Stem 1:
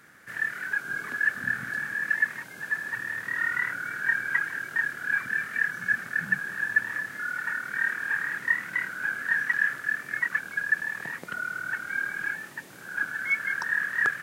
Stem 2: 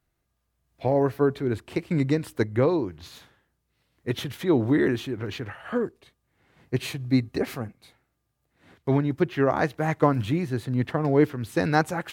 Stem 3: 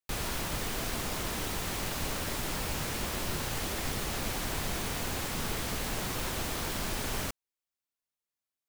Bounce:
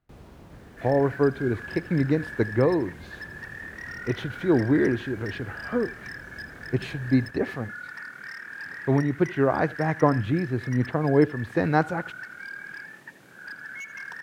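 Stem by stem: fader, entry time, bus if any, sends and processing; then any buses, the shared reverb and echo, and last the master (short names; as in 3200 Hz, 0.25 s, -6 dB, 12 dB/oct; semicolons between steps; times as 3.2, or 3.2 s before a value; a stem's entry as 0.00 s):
-3.5 dB, 0.50 s, no send, echo send -13.5 dB, bell 1200 Hz -3 dB 1 oct; compressor 2:1, threshold -30 dBFS, peak gain reduction 7 dB; wavefolder -27 dBFS
+0.5 dB, 0.00 s, no send, echo send -23 dB, high shelf 4800 Hz -10.5 dB
-15.0 dB, 0.00 s, no send, no echo send, HPF 55 Hz; tilt shelf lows +7.5 dB, about 880 Hz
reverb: off
echo: echo 80 ms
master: high shelf 4700 Hz -9 dB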